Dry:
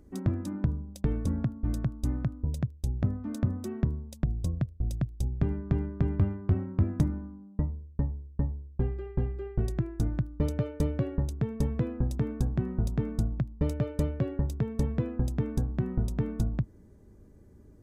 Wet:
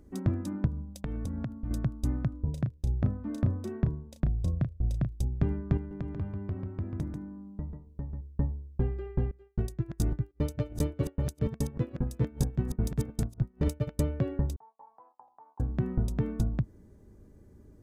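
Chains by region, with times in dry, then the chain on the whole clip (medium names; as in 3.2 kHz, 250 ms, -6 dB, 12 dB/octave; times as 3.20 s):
0.67–1.71 s: peaking EQ 380 Hz -9.5 dB 0.25 oct + compression 5:1, threshold -30 dBFS
2.30–5.13 s: treble shelf 4.6 kHz -9 dB + doubling 34 ms -8.5 dB
5.77–8.21 s: compression 1.5:1, threshold -46 dBFS + delay 141 ms -5.5 dB
9.31–14.01 s: chunks repeated in reverse 542 ms, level -5 dB + expander -24 dBFS + treble shelf 3.9 kHz +10.5 dB
14.56–15.60 s: gate -36 dBFS, range -22 dB + Butterworth band-pass 900 Hz, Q 3.8
whole clip: none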